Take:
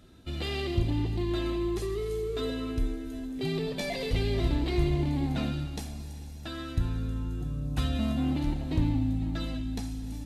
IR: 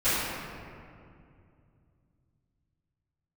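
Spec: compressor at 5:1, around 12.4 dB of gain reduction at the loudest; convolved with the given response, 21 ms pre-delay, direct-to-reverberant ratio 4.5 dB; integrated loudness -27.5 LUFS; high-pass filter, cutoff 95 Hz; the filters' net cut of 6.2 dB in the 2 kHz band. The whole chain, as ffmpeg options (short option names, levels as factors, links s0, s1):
-filter_complex "[0:a]highpass=95,equalizer=f=2000:t=o:g=-8,acompressor=threshold=0.0112:ratio=5,asplit=2[s0][s1];[1:a]atrim=start_sample=2205,adelay=21[s2];[s1][s2]afir=irnorm=-1:irlink=0,volume=0.106[s3];[s0][s3]amix=inputs=2:normalize=0,volume=4.22"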